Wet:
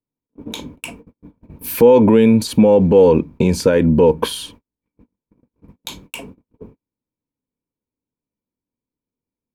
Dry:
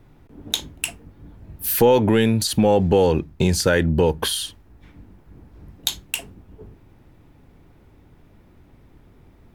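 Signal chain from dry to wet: gate -40 dBFS, range -43 dB; limiter -11 dBFS, peak gain reduction 7 dB; small resonant body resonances 250/470/950/2300 Hz, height 15 dB, ringing for 20 ms; gain -4 dB

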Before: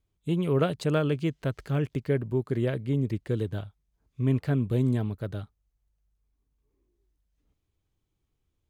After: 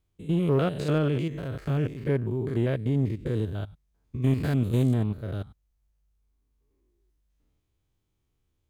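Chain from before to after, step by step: stepped spectrum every 0.1 s; 4.22–4.94 high shelf 3000 Hz +11.5 dB; in parallel at -7 dB: overloaded stage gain 25 dB

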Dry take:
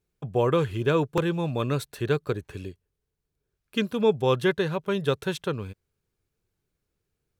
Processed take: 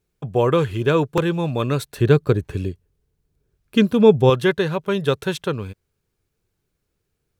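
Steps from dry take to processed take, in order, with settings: 1.96–4.3 low shelf 410 Hz +8.5 dB; gain +5 dB

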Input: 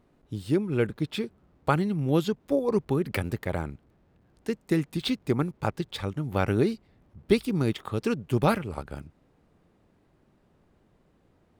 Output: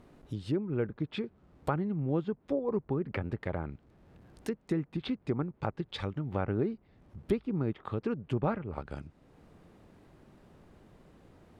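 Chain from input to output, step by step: treble ducked by the level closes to 1500 Hz, closed at -24.5 dBFS; compressor 1.5:1, threshold -59 dBFS, peak gain reduction 15.5 dB; gain +7 dB

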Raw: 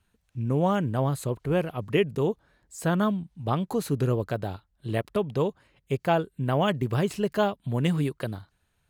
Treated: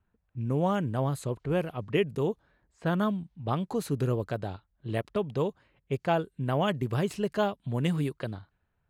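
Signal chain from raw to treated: low-pass opened by the level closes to 1500 Hz, open at -23 dBFS; gain -3 dB

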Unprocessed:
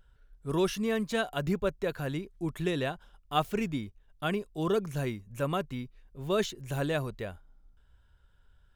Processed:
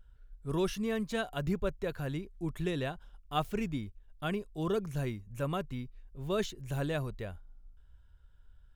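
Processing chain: low shelf 98 Hz +10.5 dB; gain -4.5 dB

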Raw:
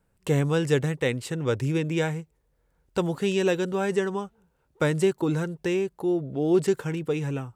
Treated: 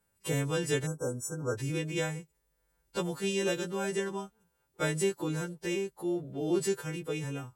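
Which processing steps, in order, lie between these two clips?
frequency quantiser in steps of 2 st; spectral delete 0.86–1.57, 1600–5300 Hz; gain -7 dB

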